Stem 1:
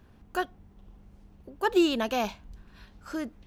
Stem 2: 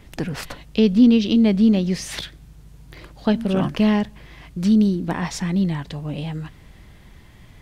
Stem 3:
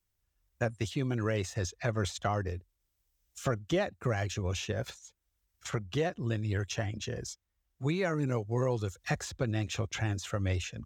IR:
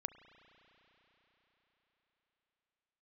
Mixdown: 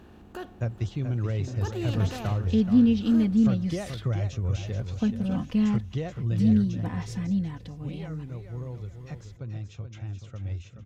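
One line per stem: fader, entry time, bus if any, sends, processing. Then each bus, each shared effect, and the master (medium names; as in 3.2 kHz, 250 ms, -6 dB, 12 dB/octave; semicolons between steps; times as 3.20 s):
-13.5 dB, 0.00 s, send -10 dB, echo send -17.5 dB, spectral levelling over time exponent 0.6; peak limiter -17 dBFS, peak gain reduction 5 dB
-15.5 dB, 1.75 s, no send, no echo send, comb 4 ms, depth 75%
6.47 s -8 dB -> 6.78 s -17 dB, 0.00 s, send -10.5 dB, echo send -6.5 dB, low-pass 6.9 kHz 24 dB/octave; band-stop 1.7 kHz, Q 9.9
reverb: on, RT60 4.6 s, pre-delay 33 ms
echo: feedback delay 430 ms, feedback 33%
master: peaking EQ 100 Hz +13.5 dB 2 oct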